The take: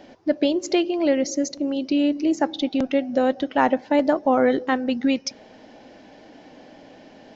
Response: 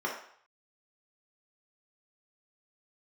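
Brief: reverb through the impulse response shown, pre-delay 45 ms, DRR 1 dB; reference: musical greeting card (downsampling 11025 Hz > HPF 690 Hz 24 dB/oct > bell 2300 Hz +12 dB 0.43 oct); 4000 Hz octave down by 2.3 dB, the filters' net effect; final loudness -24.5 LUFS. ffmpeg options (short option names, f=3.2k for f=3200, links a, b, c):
-filter_complex "[0:a]equalizer=f=4k:t=o:g=-7,asplit=2[a][b];[1:a]atrim=start_sample=2205,adelay=45[c];[b][c]afir=irnorm=-1:irlink=0,volume=-9dB[d];[a][d]amix=inputs=2:normalize=0,aresample=11025,aresample=44100,highpass=f=690:w=0.5412,highpass=f=690:w=1.3066,equalizer=f=2.3k:t=o:w=0.43:g=12,volume=1dB"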